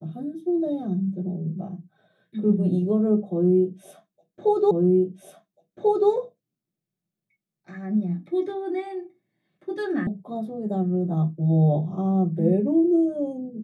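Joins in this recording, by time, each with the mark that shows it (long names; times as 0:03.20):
0:04.71: the same again, the last 1.39 s
0:10.07: cut off before it has died away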